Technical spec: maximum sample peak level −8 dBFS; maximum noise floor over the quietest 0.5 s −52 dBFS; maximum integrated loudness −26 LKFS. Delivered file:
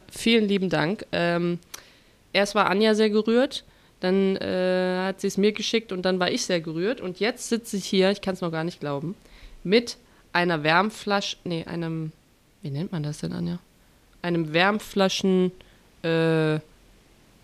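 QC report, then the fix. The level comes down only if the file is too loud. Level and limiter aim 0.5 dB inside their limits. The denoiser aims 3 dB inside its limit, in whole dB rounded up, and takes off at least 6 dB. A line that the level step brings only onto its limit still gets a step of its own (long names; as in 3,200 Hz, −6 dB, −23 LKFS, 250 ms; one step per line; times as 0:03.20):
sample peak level −5.0 dBFS: out of spec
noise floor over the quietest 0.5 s −59 dBFS: in spec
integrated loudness −24.5 LKFS: out of spec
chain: level −2 dB
brickwall limiter −8.5 dBFS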